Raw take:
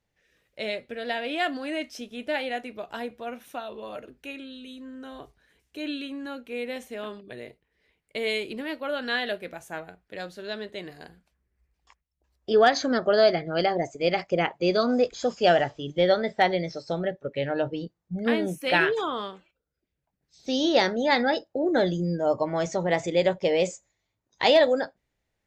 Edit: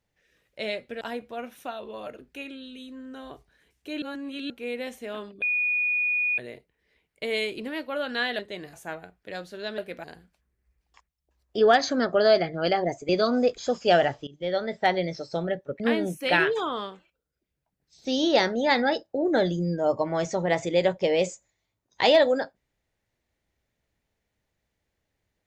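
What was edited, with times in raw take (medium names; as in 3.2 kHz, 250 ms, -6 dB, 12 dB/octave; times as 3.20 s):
1.01–2.90 s: delete
5.91–6.39 s: reverse
7.31 s: add tone 2.46 kHz -22 dBFS 0.96 s
9.32–9.58 s: swap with 10.63–10.97 s
14.02–14.65 s: delete
15.83–16.76 s: fade in equal-power, from -19 dB
17.36–18.21 s: delete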